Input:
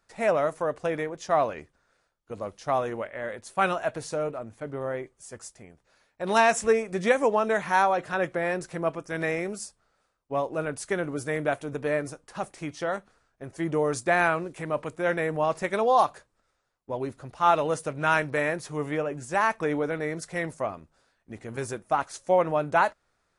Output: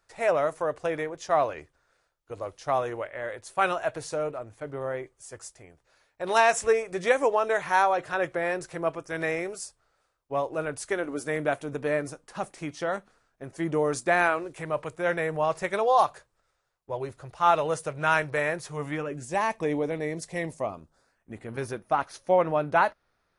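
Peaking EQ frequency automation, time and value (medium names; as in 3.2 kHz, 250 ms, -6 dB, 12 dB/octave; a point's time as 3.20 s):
peaking EQ -15 dB 0.38 oct
10.80 s 210 Hz
11.60 s 75 Hz
13.79 s 75 Hz
14.63 s 250 Hz
18.70 s 250 Hz
19.31 s 1.4 kHz
20.60 s 1.4 kHz
21.57 s 7.6 kHz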